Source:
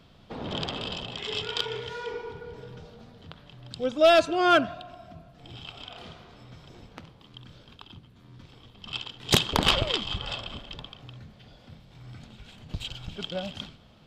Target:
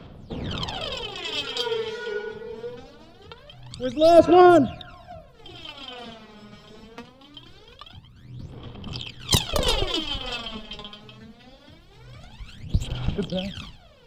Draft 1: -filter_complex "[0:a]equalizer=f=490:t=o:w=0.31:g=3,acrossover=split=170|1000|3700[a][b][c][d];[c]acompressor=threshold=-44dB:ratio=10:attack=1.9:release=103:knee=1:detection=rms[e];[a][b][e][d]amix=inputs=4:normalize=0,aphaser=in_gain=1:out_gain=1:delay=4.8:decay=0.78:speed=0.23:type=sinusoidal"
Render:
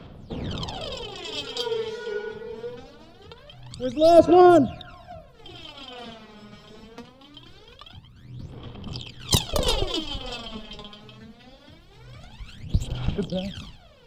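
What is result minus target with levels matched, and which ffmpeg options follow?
compressor: peak gain reduction +10.5 dB
-filter_complex "[0:a]equalizer=f=490:t=o:w=0.31:g=3,acrossover=split=170|1000|3700[a][b][c][d];[c]acompressor=threshold=-32.5dB:ratio=10:attack=1.9:release=103:knee=1:detection=rms[e];[a][b][e][d]amix=inputs=4:normalize=0,aphaser=in_gain=1:out_gain=1:delay=4.8:decay=0.78:speed=0.23:type=sinusoidal"

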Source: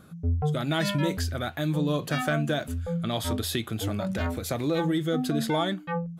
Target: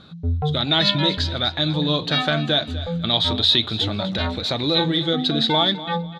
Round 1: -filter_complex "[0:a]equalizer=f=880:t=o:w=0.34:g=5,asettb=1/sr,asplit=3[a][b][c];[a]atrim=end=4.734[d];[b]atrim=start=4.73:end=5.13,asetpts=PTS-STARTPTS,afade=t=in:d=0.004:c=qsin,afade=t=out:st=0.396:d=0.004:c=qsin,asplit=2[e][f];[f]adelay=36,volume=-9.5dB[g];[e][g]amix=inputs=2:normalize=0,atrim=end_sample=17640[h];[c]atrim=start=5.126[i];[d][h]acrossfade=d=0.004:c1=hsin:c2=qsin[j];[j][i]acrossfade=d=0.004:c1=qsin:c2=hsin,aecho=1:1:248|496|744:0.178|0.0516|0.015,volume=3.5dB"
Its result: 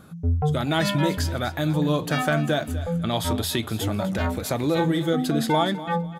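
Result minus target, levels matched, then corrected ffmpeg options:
4000 Hz band -9.5 dB
-filter_complex "[0:a]lowpass=f=3.9k:t=q:w=9.2,equalizer=f=880:t=o:w=0.34:g=5,asettb=1/sr,asplit=3[a][b][c];[a]atrim=end=4.734[d];[b]atrim=start=4.73:end=5.13,asetpts=PTS-STARTPTS,afade=t=in:d=0.004:c=qsin,afade=t=out:st=0.396:d=0.004:c=qsin,asplit=2[e][f];[f]adelay=36,volume=-9.5dB[g];[e][g]amix=inputs=2:normalize=0,atrim=end_sample=17640[h];[c]atrim=start=5.126[i];[d][h]acrossfade=d=0.004:c1=hsin:c2=qsin[j];[j][i]acrossfade=d=0.004:c1=qsin:c2=hsin,aecho=1:1:248|496|744:0.178|0.0516|0.015,volume=3.5dB"

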